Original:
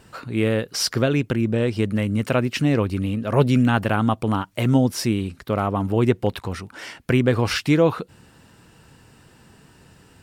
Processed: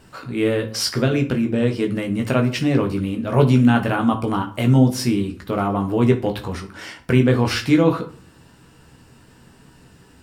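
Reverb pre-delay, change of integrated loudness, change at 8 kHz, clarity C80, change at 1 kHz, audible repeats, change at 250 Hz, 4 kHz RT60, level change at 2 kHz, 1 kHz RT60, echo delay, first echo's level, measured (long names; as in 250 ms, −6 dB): 12 ms, +2.0 dB, 0.0 dB, 18.0 dB, +1.5 dB, no echo audible, +3.0 dB, 0.35 s, +0.5 dB, 0.45 s, no echo audible, no echo audible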